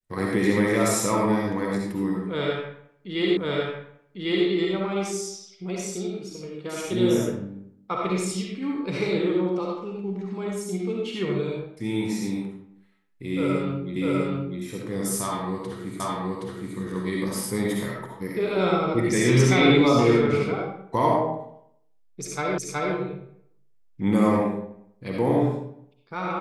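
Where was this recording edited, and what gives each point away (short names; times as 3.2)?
3.37 repeat of the last 1.1 s
13.96 repeat of the last 0.65 s
16 repeat of the last 0.77 s
22.58 repeat of the last 0.37 s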